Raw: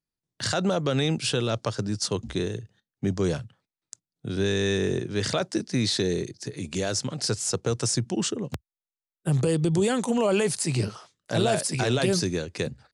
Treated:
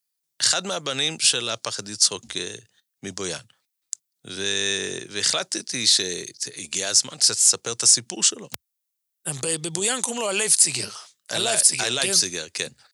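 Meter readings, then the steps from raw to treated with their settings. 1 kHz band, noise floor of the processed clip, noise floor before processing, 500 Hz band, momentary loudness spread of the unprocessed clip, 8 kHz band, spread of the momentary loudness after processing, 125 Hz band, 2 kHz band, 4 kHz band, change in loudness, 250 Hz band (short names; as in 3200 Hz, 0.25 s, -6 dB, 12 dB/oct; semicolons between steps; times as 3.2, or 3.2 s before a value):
-0.5 dB, -80 dBFS, under -85 dBFS, -5.0 dB, 9 LU, +13.0 dB, 18 LU, -13.0 dB, +4.5 dB, +9.5 dB, +5.5 dB, -9.0 dB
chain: tilt +4.5 dB/oct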